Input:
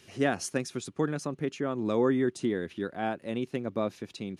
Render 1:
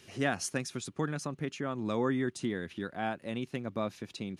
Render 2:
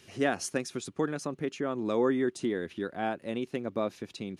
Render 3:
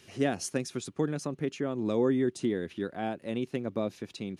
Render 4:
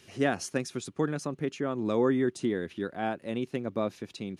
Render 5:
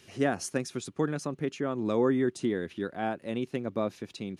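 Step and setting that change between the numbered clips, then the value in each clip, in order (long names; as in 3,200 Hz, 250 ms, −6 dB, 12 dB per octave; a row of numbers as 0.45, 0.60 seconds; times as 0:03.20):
dynamic equaliser, frequency: 400, 120, 1,300, 9,600, 3,300 Hertz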